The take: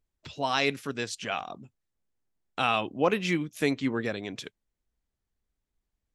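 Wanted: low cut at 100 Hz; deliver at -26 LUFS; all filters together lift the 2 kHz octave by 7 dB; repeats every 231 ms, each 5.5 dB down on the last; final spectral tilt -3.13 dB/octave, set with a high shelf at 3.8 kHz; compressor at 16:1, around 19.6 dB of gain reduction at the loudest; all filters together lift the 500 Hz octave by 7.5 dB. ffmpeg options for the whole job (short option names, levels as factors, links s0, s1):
-af "highpass=100,equalizer=f=500:t=o:g=8.5,equalizer=f=2000:t=o:g=6.5,highshelf=f=3800:g=6.5,acompressor=threshold=0.0282:ratio=16,aecho=1:1:231|462|693|924|1155|1386|1617:0.531|0.281|0.149|0.079|0.0419|0.0222|0.0118,volume=3.16"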